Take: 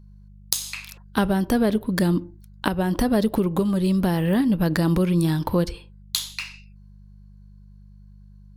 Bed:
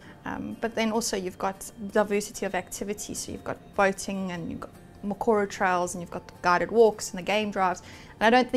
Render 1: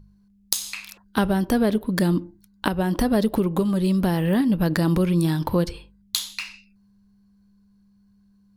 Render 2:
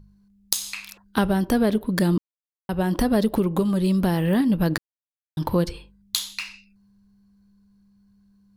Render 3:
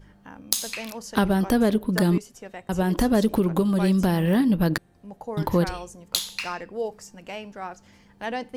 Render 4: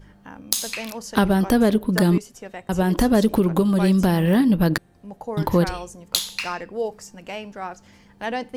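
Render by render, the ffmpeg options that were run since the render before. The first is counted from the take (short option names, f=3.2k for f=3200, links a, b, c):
-af "bandreject=f=50:t=h:w=4,bandreject=f=100:t=h:w=4,bandreject=f=150:t=h:w=4"
-filter_complex "[0:a]asplit=5[a][b][c][d][e];[a]atrim=end=2.18,asetpts=PTS-STARTPTS,afade=t=out:st=2.176:d=0.004:c=hsin[f];[b]atrim=start=2.18:end=2.69,asetpts=PTS-STARTPTS,volume=0[g];[c]atrim=start=2.69:end=4.78,asetpts=PTS-STARTPTS,afade=t=in:d=0.004:c=hsin,afade=t=out:st=2.086:d=0.004:c=hsin[h];[d]atrim=start=4.78:end=5.37,asetpts=PTS-STARTPTS,volume=0[i];[e]atrim=start=5.37,asetpts=PTS-STARTPTS,afade=t=in:d=0.004:c=hsin[j];[f][g][h][i][j]concat=n=5:v=0:a=1"
-filter_complex "[1:a]volume=-10.5dB[a];[0:a][a]amix=inputs=2:normalize=0"
-af "volume=3dB,alimiter=limit=-2dB:level=0:latency=1"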